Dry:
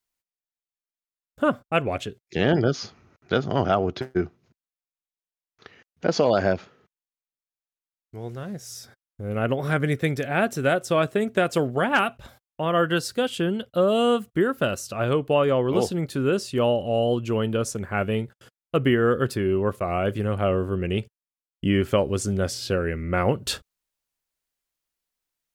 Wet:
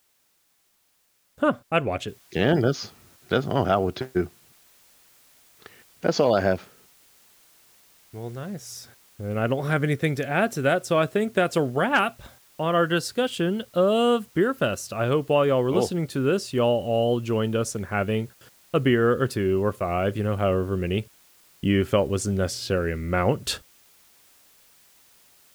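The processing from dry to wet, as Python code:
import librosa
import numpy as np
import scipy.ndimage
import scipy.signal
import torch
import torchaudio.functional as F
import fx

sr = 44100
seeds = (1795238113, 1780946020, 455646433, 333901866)

y = fx.noise_floor_step(x, sr, seeds[0], at_s=2.08, before_db=-67, after_db=-57, tilt_db=0.0)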